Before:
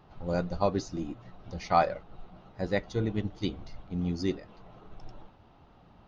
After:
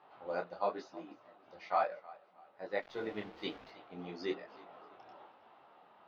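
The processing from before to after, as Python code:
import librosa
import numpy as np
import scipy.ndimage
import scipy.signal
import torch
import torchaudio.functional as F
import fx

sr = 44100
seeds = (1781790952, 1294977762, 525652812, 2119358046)

y = scipy.signal.sosfilt(scipy.signal.butter(2, 590.0, 'highpass', fs=sr, output='sos'), x)
y = fx.rider(y, sr, range_db=5, speed_s=0.5)
y = fx.quant_dither(y, sr, seeds[0], bits=8, dither='none', at=(2.8, 3.7))
y = fx.air_absorb(y, sr, metres=280.0)
y = fx.echo_feedback(y, sr, ms=317, feedback_pct=35, wet_db=-21.0)
y = fx.detune_double(y, sr, cents=38)
y = y * 10.0 ** (2.0 / 20.0)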